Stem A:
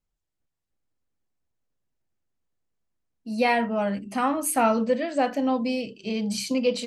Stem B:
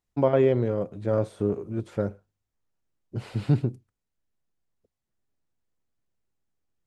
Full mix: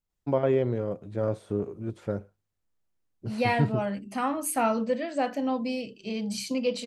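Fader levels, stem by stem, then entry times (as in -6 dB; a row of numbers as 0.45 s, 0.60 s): -4.0 dB, -3.5 dB; 0.00 s, 0.10 s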